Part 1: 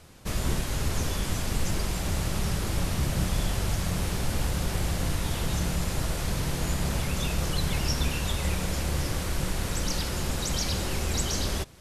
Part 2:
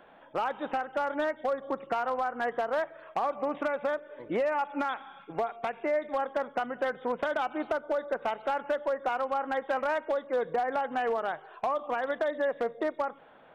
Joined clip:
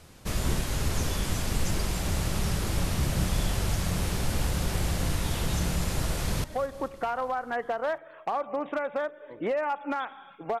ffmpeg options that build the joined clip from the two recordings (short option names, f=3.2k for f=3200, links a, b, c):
-filter_complex "[0:a]apad=whole_dur=10.6,atrim=end=10.6,atrim=end=6.442[a];[1:a]atrim=start=1.328:end=5.49[b];[a][b]acrossfade=d=0.004:c1=hsin:c2=hsin,asplit=2[c][d];[d]afade=t=in:st=6.07:d=0.01,afade=t=out:st=6.44:d=0.01,aecho=0:1:220|440|660|880|1100|1320|1540:0.149624|0.0972553|0.063216|0.0410904|0.0267087|0.0173607|0.0112844[e];[c][e]amix=inputs=2:normalize=0"